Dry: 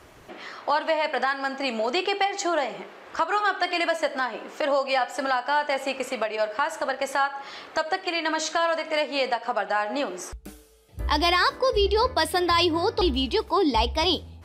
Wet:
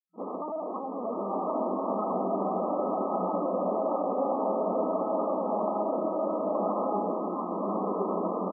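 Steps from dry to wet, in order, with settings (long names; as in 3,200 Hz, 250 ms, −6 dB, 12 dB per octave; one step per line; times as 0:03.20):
slap from a distant wall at 23 metres, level −10 dB
in parallel at +1 dB: downward compressor 5 to 1, threshold −34 dBFS, peak gain reduction 15 dB
on the sum: brickwall limiter −17.5 dBFS, peak gain reduction 10 dB
rotating-speaker cabinet horn 7.5 Hz, later 0.6 Hz, at 0:06.03
time stretch by overlap-add 0.59×, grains 41 ms
comparator with hysteresis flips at −35.5 dBFS
on a send: repeating echo 500 ms, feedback 35%, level −14 dB
on the sum: linear-prediction vocoder at 8 kHz pitch kept
brick-wall band-pass 180–1,300 Hz
slow-attack reverb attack 1,210 ms, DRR −4 dB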